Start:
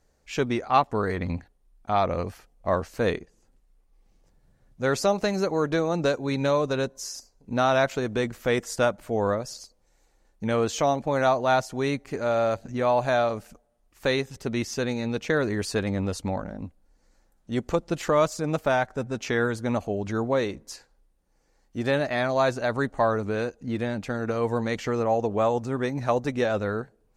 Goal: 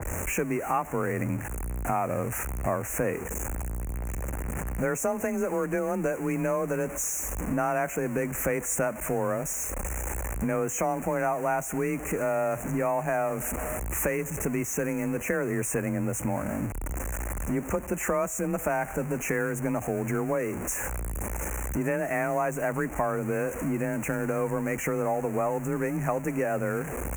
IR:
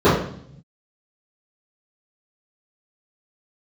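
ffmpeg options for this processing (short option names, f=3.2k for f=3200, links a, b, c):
-af "aeval=exprs='val(0)+0.5*0.0316*sgn(val(0))':c=same,acompressor=threshold=-32dB:ratio=3,afreqshift=24,asuperstop=centerf=4100:order=8:qfactor=0.97,adynamicequalizer=threshold=0.00447:dfrequency=2500:dqfactor=0.7:tfrequency=2500:tqfactor=0.7:attack=5:release=100:ratio=0.375:range=2.5:mode=boostabove:tftype=highshelf,volume=4dB"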